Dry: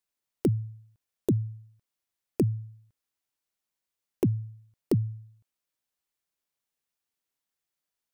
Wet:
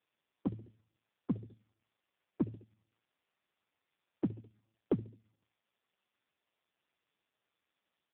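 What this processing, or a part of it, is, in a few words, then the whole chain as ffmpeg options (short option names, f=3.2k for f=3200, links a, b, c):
telephone: -filter_complex "[0:a]asettb=1/sr,asplit=3[a][b][c];[a]atrim=end=4.314[d];[b]atrim=start=4.31:end=4.99,asetpts=PTS-STARTPTS,afade=t=in:d=0.004:c=qsin,afade=t=out:st=0.676:d=0.004:c=qsin,equalizer=f=1.5k:t=o:w=2.2:g=-4.5[e];[c]atrim=start=4.986[f];[d][e]acrossfade=d=0.004:c1=hsin:c2=qsin[g];[g][f]acrossfade=d=0.004:c1=qsin:c2=hsin,highpass=270,lowpass=3.4k,aecho=1:1:71|142|213:0.0668|0.0334|0.0167,asoftclip=type=tanh:threshold=-22dB,volume=1dB" -ar 8000 -c:a libopencore_amrnb -b:a 4750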